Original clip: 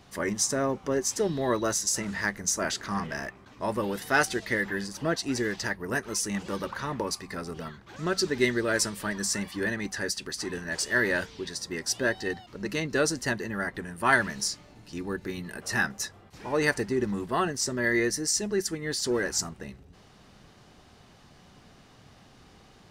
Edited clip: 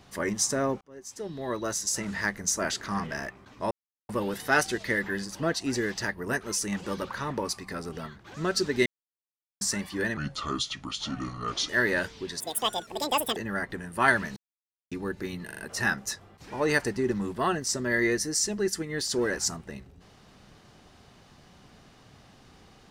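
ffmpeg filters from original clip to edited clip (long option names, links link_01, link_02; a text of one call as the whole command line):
ffmpeg -i in.wav -filter_complex "[0:a]asplit=14[link_01][link_02][link_03][link_04][link_05][link_06][link_07][link_08][link_09][link_10][link_11][link_12][link_13][link_14];[link_01]atrim=end=0.81,asetpts=PTS-STARTPTS,afade=type=out:start_time=0.806:duration=0.004:curve=hsin[link_15];[link_02]atrim=start=0.81:end=3.71,asetpts=PTS-STARTPTS,afade=type=in:duration=1.32,afade=type=out:start_time=2.896:duration=0.004:curve=hsin,apad=pad_dur=0.38[link_16];[link_03]atrim=start=3.71:end=8.48,asetpts=PTS-STARTPTS,afade=type=in:duration=0.004:curve=hsin,afade=type=out:start_time=4.766:duration=0.004:curve=hsin[link_17];[link_04]atrim=start=8.48:end=9.23,asetpts=PTS-STARTPTS,volume=0[link_18];[link_05]atrim=start=9.23:end=9.794,asetpts=PTS-STARTPTS,afade=type=in:duration=0.004:curve=hsin[link_19];[link_06]atrim=start=9.79:end=10.87,asetpts=PTS-STARTPTS,asetrate=31311,aresample=44100[link_20];[link_07]atrim=start=10.866:end=11.584[link_21];[link_08]atrim=start=11.58:end=13.41,asetpts=PTS-STARTPTS,asetrate=83790,aresample=44100,atrim=end_sample=42475,asetpts=PTS-STARTPTS[link_22];[link_09]atrim=start=13.406:end=14.41,asetpts=PTS-STARTPTS,afade=type=out:start_time=1:duration=0.004:curve=hsin[link_23];[link_10]atrim=start=14.41:end=14.96,asetpts=PTS-STARTPTS,volume=0[link_24];[link_11]atrim=start=14.96:end=15.542,asetpts=PTS-STARTPTS,afade=type=in:duration=0.004:curve=hsin[link_25];[link_12]atrim=start=15.498:end=15.542[link_26];[link_13]atrim=start=15.498:end=15.542[link_27];[link_14]atrim=start=15.498[link_28];[link_15][link_16][link_17][link_18][link_19]concat=n=5:v=0:a=1[link_29];[link_29][link_20]acrossfade=duration=0.004:curve1=hsin:curve2=hsin[link_30];[link_30][link_21]acrossfade=duration=0.004:curve1=hsin:curve2=hsin[link_31];[link_31][link_22]acrossfade=duration=0.004:curve1=hsin:curve2=hsin[link_32];[link_23][link_24][link_25]concat=n=3:v=0:a=1[link_33];[link_32][link_33]acrossfade=duration=0.004:curve1=hsin:curve2=hsin[link_34];[link_34][link_26]acrossfade=duration=0.004:curve1=hsin:curve2=hsin[link_35];[link_35][link_27]acrossfade=duration=0.004:curve1=hsin:curve2=hsin[link_36];[link_36][link_28]acrossfade=duration=0.004:curve1=hsin:curve2=hsin" out.wav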